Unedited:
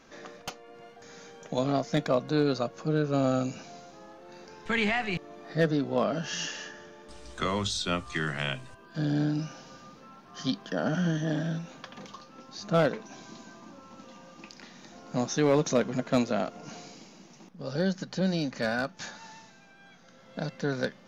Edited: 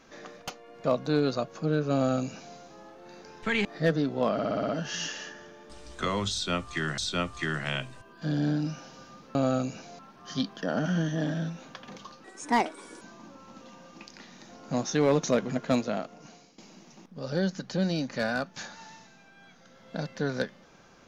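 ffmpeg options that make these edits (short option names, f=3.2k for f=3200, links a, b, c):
-filter_complex "[0:a]asplit=15[a][b][c][d][e][f][g][h][i][j][k][l][m][n][o];[a]atrim=end=0.842[p];[b]atrim=start=2.068:end=4.882[q];[c]atrim=start=5.398:end=6.142[r];[d]atrim=start=6.078:end=6.142[s];[e]atrim=start=6.078:end=6.142[t];[f]atrim=start=6.078:end=6.142[u];[g]atrim=start=6.078:end=6.142[v];[h]atrim=start=6.078:end=6.142[w];[i]atrim=start=6.078:end=8.372[x];[j]atrim=start=7.708:end=10.082[y];[k]atrim=start=3.158:end=3.802[z];[l]atrim=start=10.078:end=12.334[aa];[m]atrim=start=12.33:end=13.44,asetpts=PTS-STARTPTS,asetrate=63504,aresample=44100[ab];[n]atrim=start=13.436:end=17.01,asetpts=PTS-STARTPTS,afade=t=out:st=2.664:d=0.91:silence=0.188365[ac];[o]atrim=start=17.01,asetpts=PTS-STARTPTS,afade=t=in:d=0.004:c=hsin:silence=0.188365[ad];[p][q]acrossfade=d=0.004:c1=hsin:c2=hsin[ae];[ae][r]acrossfade=d=0.004:c1=hsin:c2=hsin[af];[af][s]acrossfade=d=0.004:c1=hsin:c2=hsin[ag];[ag][t]acrossfade=d=0.004:c1=hsin:c2=hsin[ah];[ah][u]acrossfade=d=0.004:c1=hsin:c2=hsin[ai];[ai][v]acrossfade=d=0.004:c1=hsin:c2=hsin[aj];[aj][w]acrossfade=d=0.004:c1=hsin:c2=hsin[ak];[ak][x]acrossfade=d=0.004:c1=hsin:c2=hsin[al];[al][y]acrossfade=d=0.004:c1=hsin:c2=hsin[am];[am][z]acrossfade=d=0.004:c1=hsin:c2=hsin[an];[an][aa]acrossfade=d=0.004:c1=hsin:c2=hsin[ao];[ao][ab]acrossfade=d=0.004:c1=hsin:c2=hsin[ap];[ac][ad]concat=n=2:v=0:a=1[aq];[ap][aq]acrossfade=d=0.004:c1=hsin:c2=hsin"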